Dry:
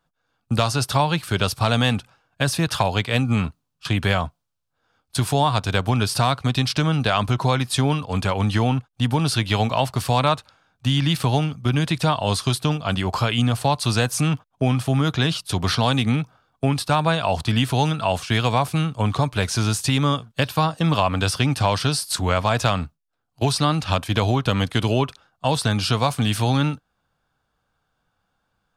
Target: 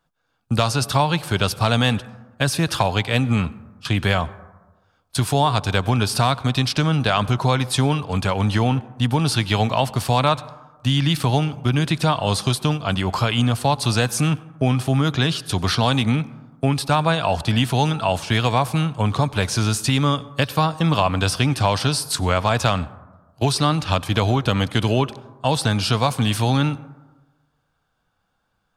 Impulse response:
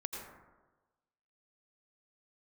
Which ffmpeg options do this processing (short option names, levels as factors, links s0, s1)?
-filter_complex "[0:a]asplit=2[s0][s1];[1:a]atrim=start_sample=2205,asetrate=42777,aresample=44100[s2];[s1][s2]afir=irnorm=-1:irlink=0,volume=0.168[s3];[s0][s3]amix=inputs=2:normalize=0"